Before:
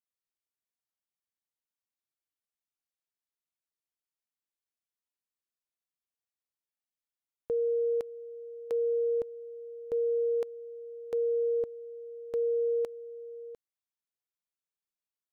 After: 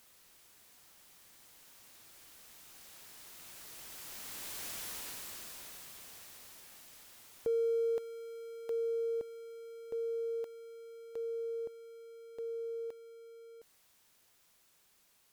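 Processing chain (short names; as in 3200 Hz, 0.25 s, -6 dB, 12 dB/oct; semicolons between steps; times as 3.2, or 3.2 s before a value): zero-crossing step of -44.5 dBFS; Doppler pass-by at 4.75, 6 m/s, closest 2.8 m; gain +12.5 dB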